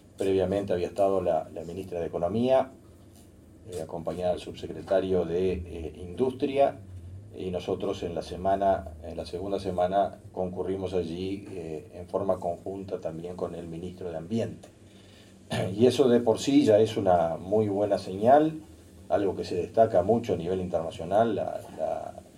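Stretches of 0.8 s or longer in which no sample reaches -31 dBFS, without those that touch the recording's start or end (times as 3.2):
2.64–3.69
14.5–15.51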